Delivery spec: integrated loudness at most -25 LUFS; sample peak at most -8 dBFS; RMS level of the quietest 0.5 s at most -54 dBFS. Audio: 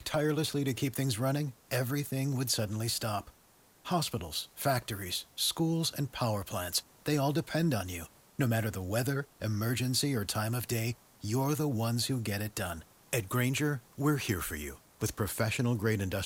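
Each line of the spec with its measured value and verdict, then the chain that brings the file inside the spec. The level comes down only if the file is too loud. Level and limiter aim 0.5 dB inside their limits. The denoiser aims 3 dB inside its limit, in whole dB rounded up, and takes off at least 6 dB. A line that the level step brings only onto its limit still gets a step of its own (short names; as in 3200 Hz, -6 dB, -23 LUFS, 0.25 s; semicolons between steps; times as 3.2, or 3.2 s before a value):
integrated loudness -32.5 LUFS: OK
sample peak -16.5 dBFS: OK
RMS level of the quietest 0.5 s -63 dBFS: OK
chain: none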